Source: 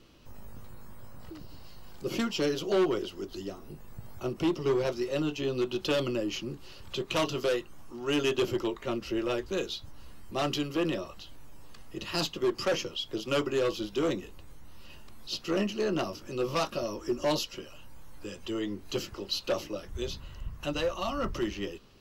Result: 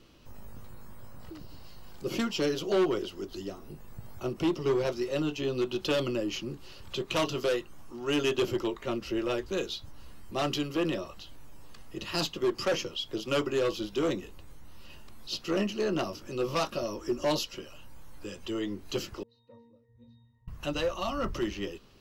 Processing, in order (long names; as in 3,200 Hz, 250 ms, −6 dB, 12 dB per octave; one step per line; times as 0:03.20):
0:19.23–0:20.48: resonances in every octave A#, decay 0.61 s